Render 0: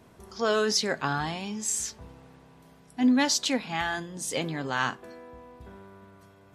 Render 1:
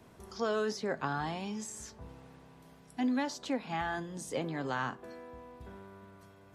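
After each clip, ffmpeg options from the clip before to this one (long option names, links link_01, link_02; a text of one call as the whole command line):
ffmpeg -i in.wav -filter_complex "[0:a]acrossover=split=280|1500[link_01][link_02][link_03];[link_01]acompressor=threshold=-38dB:ratio=4[link_04];[link_02]acompressor=threshold=-29dB:ratio=4[link_05];[link_03]acompressor=threshold=-44dB:ratio=4[link_06];[link_04][link_05][link_06]amix=inputs=3:normalize=0,volume=-2dB" out.wav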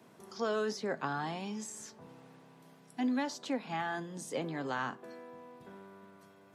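ffmpeg -i in.wav -af "highpass=frequency=140:width=0.5412,highpass=frequency=140:width=1.3066,volume=-1dB" out.wav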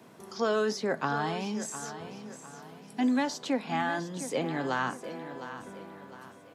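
ffmpeg -i in.wav -af "aecho=1:1:707|1414|2121|2828:0.251|0.1|0.0402|0.0161,volume=5.5dB" out.wav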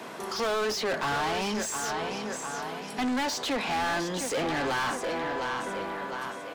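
ffmpeg -i in.wav -filter_complex "[0:a]asplit=2[link_01][link_02];[link_02]highpass=frequency=720:poles=1,volume=32dB,asoftclip=type=tanh:threshold=-14dB[link_03];[link_01][link_03]amix=inputs=2:normalize=0,lowpass=frequency=4700:poles=1,volume=-6dB,volume=-7.5dB" out.wav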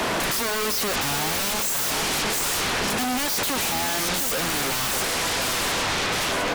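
ffmpeg -i in.wav -af "aeval=exprs='0.0841*sin(PI/2*7.94*val(0)/0.0841)':channel_layout=same" out.wav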